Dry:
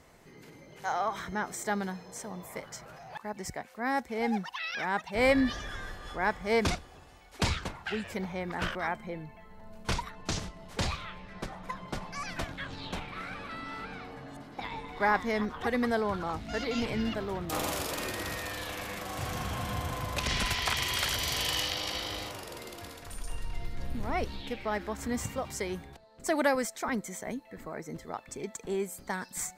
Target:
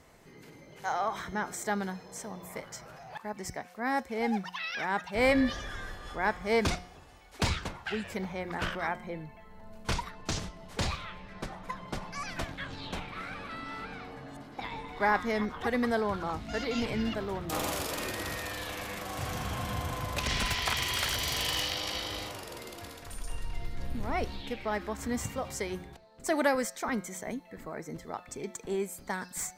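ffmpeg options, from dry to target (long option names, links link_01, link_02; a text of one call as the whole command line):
ffmpeg -i in.wav -filter_complex "[0:a]bandreject=frequency=179.4:width_type=h:width=4,bandreject=frequency=358.8:width_type=h:width=4,bandreject=frequency=538.2:width_type=h:width=4,bandreject=frequency=717.6:width_type=h:width=4,bandreject=frequency=897:width_type=h:width=4,bandreject=frequency=1076.4:width_type=h:width=4,bandreject=frequency=1255.8:width_type=h:width=4,bandreject=frequency=1435.2:width_type=h:width=4,bandreject=frequency=1614.6:width_type=h:width=4,bandreject=frequency=1794:width_type=h:width=4,bandreject=frequency=1973.4:width_type=h:width=4,bandreject=frequency=2152.8:width_type=h:width=4,bandreject=frequency=2332.2:width_type=h:width=4,bandreject=frequency=2511.6:width_type=h:width=4,bandreject=frequency=2691:width_type=h:width=4,bandreject=frequency=2870.4:width_type=h:width=4,bandreject=frequency=3049.8:width_type=h:width=4,bandreject=frequency=3229.2:width_type=h:width=4,bandreject=frequency=3408.6:width_type=h:width=4,bandreject=frequency=3588:width_type=h:width=4,bandreject=frequency=3767.4:width_type=h:width=4,bandreject=frequency=3946.8:width_type=h:width=4,bandreject=frequency=4126.2:width_type=h:width=4,bandreject=frequency=4305.6:width_type=h:width=4,bandreject=frequency=4485:width_type=h:width=4,bandreject=frequency=4664.4:width_type=h:width=4,bandreject=frequency=4843.8:width_type=h:width=4,bandreject=frequency=5023.2:width_type=h:width=4,bandreject=frequency=5202.6:width_type=h:width=4,bandreject=frequency=5382:width_type=h:width=4,bandreject=frequency=5561.4:width_type=h:width=4,bandreject=frequency=5740.8:width_type=h:width=4,bandreject=frequency=5920.2:width_type=h:width=4,bandreject=frequency=6099.6:width_type=h:width=4,bandreject=frequency=6279:width_type=h:width=4,acrossover=split=2500[link_01][link_02];[link_02]aeval=exprs='clip(val(0),-1,0.0335)':channel_layout=same[link_03];[link_01][link_03]amix=inputs=2:normalize=0" out.wav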